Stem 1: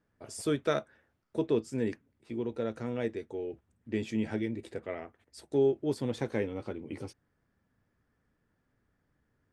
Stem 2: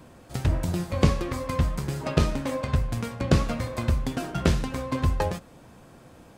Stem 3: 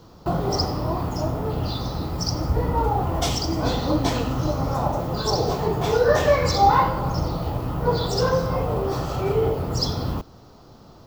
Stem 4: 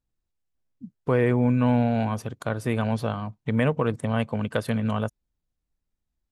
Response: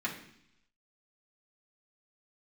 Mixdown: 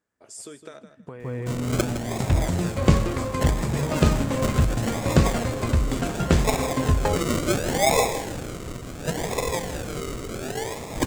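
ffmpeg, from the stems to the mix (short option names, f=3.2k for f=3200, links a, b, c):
-filter_complex "[0:a]acompressor=threshold=-30dB:ratio=6,volume=-2.5dB,asplit=2[a][b];[b]volume=-15dB[c];[1:a]highshelf=f=5.3k:g=-8.5,adelay=1850,volume=2.5dB[d];[2:a]tiltshelf=f=650:g=-9,acrusher=samples=41:mix=1:aa=0.000001:lfo=1:lforange=24.6:lforate=0.7,adelay=1200,volume=-6dB,asplit=2[e][f];[f]volume=-11dB[g];[3:a]equalizer=f=85:w=0.53:g=10,volume=-6.5dB,asplit=2[h][i];[i]volume=-8dB[j];[a][h]amix=inputs=2:normalize=0,highpass=f=380:p=1,acompressor=threshold=-36dB:ratio=12,volume=0dB[k];[c][g][j]amix=inputs=3:normalize=0,aecho=0:1:160|320|480:1|0.21|0.0441[l];[d][e][k][l]amix=inputs=4:normalize=0,equalizer=f=7.5k:t=o:w=0.51:g=8.5"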